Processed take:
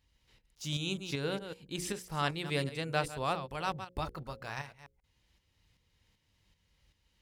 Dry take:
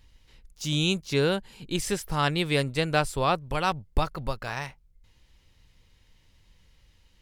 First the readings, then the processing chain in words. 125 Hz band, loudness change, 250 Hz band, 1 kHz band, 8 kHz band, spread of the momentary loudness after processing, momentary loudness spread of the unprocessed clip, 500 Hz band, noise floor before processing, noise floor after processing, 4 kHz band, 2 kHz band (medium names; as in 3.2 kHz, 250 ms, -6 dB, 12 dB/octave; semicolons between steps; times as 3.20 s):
-8.5 dB, -8.5 dB, -9.5 dB, -8.0 dB, -8.0 dB, 8 LU, 9 LU, -9.5 dB, -62 dBFS, -76 dBFS, -8.5 dB, -8.0 dB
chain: chunks repeated in reverse 139 ms, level -11 dB; high-pass 50 Hz; hum notches 60/120/180/240/300/360/420/480/540 Hz; tremolo saw up 2.6 Hz, depth 55%; trim -6 dB